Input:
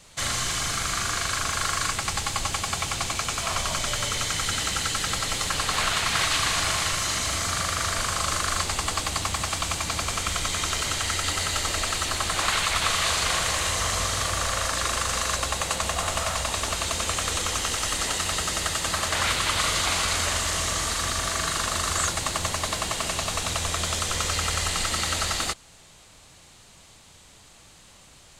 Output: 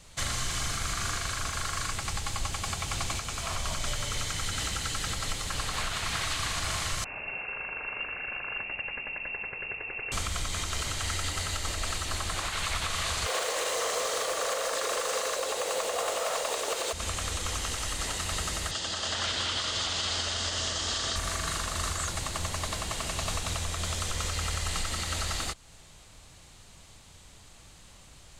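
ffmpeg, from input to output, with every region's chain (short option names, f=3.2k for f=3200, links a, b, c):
-filter_complex "[0:a]asettb=1/sr,asplit=3[a][b][c];[a]atrim=end=7.044[d];[b]atrim=start=7.04:end=10.12,asetpts=PTS-STARTPTS,afade=t=in:d=0.004:c=qsin,afade=t=out:st=3.076:d=0.004:c=qsin,equalizer=f=1.2k:w=0.85:g=-12,lowpass=f=2.4k:t=q:w=0.5098,lowpass=f=2.4k:t=q:w=0.6013,lowpass=f=2.4k:t=q:w=0.9,lowpass=f=2.4k:t=q:w=2.563,afreqshift=-2800[e];[c]atrim=start=10.116[f];[d][e]acrossfade=d=0.004:c1=hsin:c2=qsin[g];[g][f]acrossfade=d=0.004:c1=qsin:c2=hsin,asettb=1/sr,asplit=3[h][i][j];[h]atrim=end=13.264[k];[i]atrim=start=13.26:end=16.93,asetpts=PTS-STARTPTS,afade=t=in:d=0.004:c=qsin,afade=t=out:st=3.666:d=0.004:c=qsin,acontrast=78,highpass=f=470:t=q:w=4.9,acrusher=bits=4:mode=log:mix=0:aa=0.000001[l];[j]atrim=start=16.926[m];[k][l]acrossfade=d=0.004:c1=hsin:c2=qsin[n];[n][m]acrossfade=d=0.004:c1=qsin:c2=hsin,asettb=1/sr,asplit=3[o][p][q];[o]atrim=end=18.714[r];[p]atrim=start=18.71:end=21.16,asetpts=PTS-STARTPTS,afade=t=in:d=0.004:c=qsin,afade=t=out:st=2.446:d=0.004:c=qsin,highpass=110,equalizer=f=150:t=q:w=4:g=-10,equalizer=f=1.1k:t=q:w=4:g=-5,equalizer=f=2.3k:t=q:w=4:g=-7,equalizer=f=3.2k:t=q:w=4:g=7,equalizer=f=5k:t=q:w=4:g=5,lowpass=f=7.4k:w=0.5412,lowpass=f=7.4k:w=1.3066,aecho=1:1:209:0.668,atrim=end_sample=108045[s];[q]atrim=start=21.156[t];[r][s]acrossfade=d=0.004:c1=hsin:c2=qsin[u];[u][t]acrossfade=d=0.004:c1=qsin:c2=hsin,lowshelf=f=97:g=9.5,alimiter=limit=-17.5dB:level=0:latency=1:release=227,volume=-3dB"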